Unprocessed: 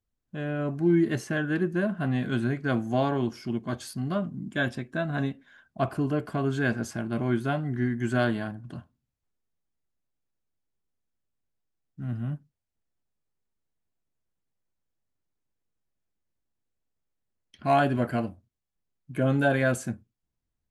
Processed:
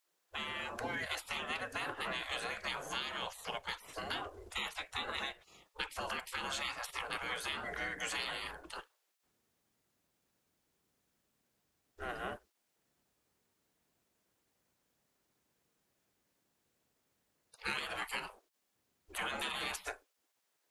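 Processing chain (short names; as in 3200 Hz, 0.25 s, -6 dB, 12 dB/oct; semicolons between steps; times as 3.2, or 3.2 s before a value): spectral gate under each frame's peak -25 dB weak; compressor, threshold -48 dBFS, peak gain reduction 13 dB; gain +12.5 dB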